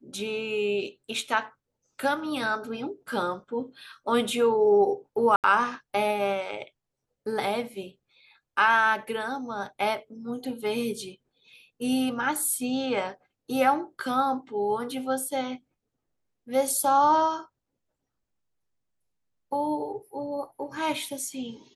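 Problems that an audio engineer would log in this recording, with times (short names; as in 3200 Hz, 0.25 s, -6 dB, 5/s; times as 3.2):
5.36–5.44 gap 78 ms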